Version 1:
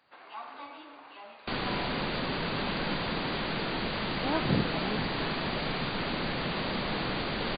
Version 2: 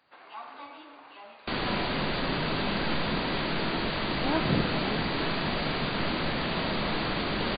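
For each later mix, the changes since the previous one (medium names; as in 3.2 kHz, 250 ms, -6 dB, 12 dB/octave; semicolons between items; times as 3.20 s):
reverb: on, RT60 1.1 s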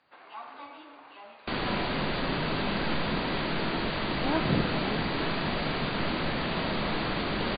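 master: add distance through air 70 m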